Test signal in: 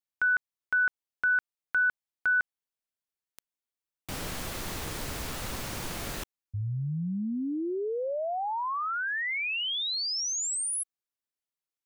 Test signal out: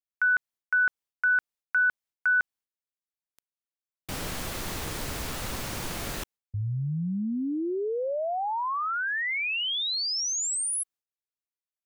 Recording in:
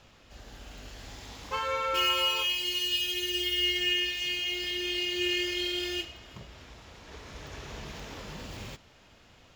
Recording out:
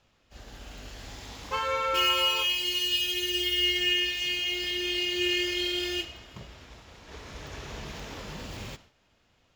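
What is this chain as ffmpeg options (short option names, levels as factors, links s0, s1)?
-af "agate=range=0.251:threshold=0.00501:ratio=3:release=313:detection=peak,volume=1.26"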